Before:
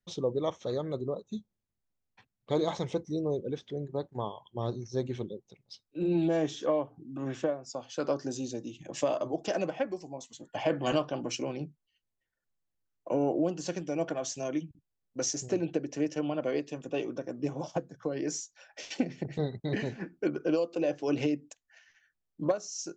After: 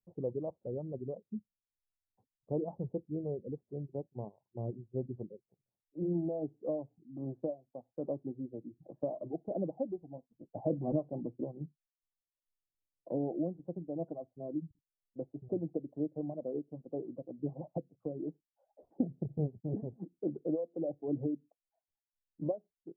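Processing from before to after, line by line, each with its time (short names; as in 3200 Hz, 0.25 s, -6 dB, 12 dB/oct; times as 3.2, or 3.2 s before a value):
9.51–11.45 low shelf 480 Hz +4.5 dB
19–19.49 low shelf 210 Hz +4 dB
whole clip: steep low-pass 750 Hz 36 dB/oct; dynamic EQ 160 Hz, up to +6 dB, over -43 dBFS, Q 0.71; reverb removal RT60 0.82 s; gain -7.5 dB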